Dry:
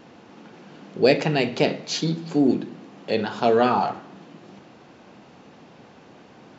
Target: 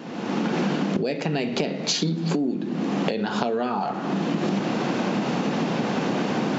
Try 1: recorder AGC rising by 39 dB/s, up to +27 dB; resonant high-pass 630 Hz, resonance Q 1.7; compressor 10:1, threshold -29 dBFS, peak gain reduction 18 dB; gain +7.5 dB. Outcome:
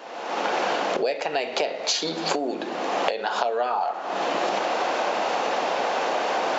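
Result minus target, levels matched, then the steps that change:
250 Hz band -11.5 dB
change: resonant high-pass 180 Hz, resonance Q 1.7

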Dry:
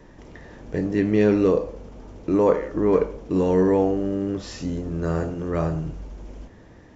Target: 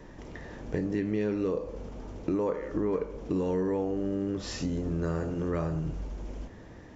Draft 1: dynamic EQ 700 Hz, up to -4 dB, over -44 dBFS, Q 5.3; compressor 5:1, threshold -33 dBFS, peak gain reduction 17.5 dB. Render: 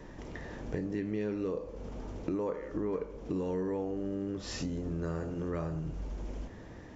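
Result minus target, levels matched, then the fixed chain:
compressor: peak gain reduction +5 dB
dynamic EQ 700 Hz, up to -4 dB, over -44 dBFS, Q 5.3; compressor 5:1, threshold -27 dBFS, peak gain reduction 13 dB

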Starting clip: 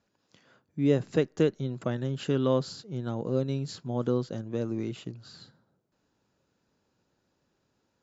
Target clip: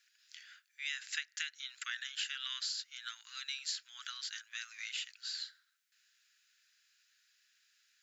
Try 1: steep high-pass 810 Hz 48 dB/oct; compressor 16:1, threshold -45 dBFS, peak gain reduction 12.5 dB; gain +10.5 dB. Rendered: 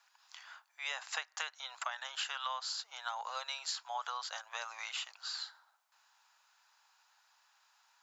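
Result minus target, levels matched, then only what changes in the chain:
1000 Hz band +15.0 dB
change: steep high-pass 1600 Hz 48 dB/oct

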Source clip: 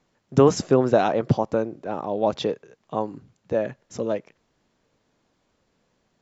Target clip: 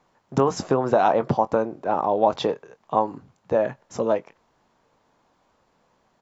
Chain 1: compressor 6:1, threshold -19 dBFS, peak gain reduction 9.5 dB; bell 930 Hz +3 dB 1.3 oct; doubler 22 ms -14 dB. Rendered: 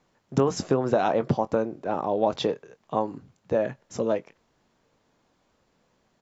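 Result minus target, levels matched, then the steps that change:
1000 Hz band -3.0 dB
change: bell 930 Hz +10.5 dB 1.3 oct

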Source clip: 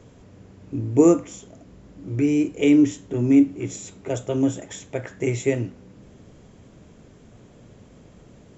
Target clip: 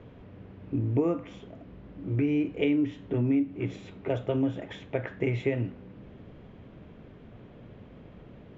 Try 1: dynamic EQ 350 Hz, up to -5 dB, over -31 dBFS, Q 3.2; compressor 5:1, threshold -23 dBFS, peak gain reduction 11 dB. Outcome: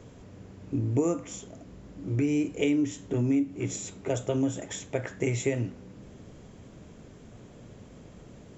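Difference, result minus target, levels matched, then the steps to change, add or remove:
4000 Hz band +3.0 dB
add after dynamic EQ: LPF 3300 Hz 24 dB/oct

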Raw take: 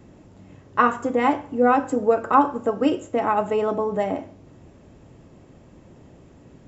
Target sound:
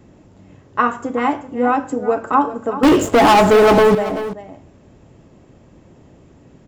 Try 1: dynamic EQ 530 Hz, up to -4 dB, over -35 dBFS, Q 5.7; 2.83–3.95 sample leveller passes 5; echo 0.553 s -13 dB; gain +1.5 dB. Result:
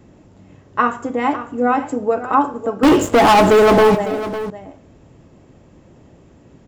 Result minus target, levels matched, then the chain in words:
echo 0.169 s late
dynamic EQ 530 Hz, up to -4 dB, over -35 dBFS, Q 5.7; 2.83–3.95 sample leveller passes 5; echo 0.384 s -13 dB; gain +1.5 dB

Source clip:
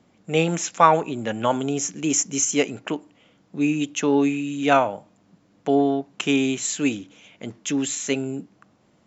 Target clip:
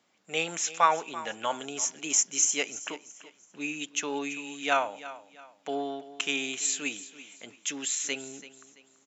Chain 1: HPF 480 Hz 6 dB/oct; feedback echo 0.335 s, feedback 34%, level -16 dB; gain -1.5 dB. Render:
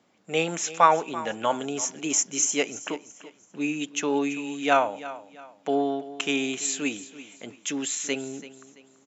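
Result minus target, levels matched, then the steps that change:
500 Hz band +4.5 dB
change: HPF 1600 Hz 6 dB/oct

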